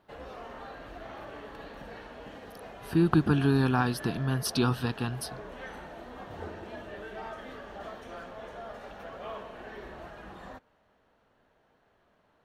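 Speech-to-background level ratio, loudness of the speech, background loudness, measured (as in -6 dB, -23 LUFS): 16.0 dB, -27.5 LUFS, -43.5 LUFS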